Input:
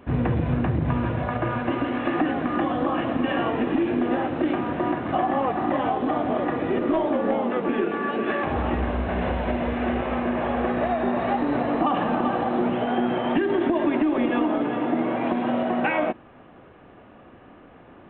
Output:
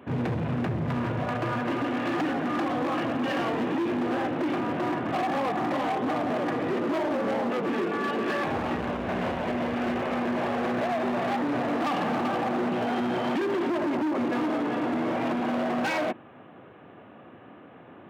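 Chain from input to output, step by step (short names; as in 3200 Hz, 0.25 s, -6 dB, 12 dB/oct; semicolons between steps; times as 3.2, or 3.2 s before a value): 13.78–14.4 LPF 2000 Hz; overloaded stage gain 24.5 dB; HPF 100 Hz 24 dB/oct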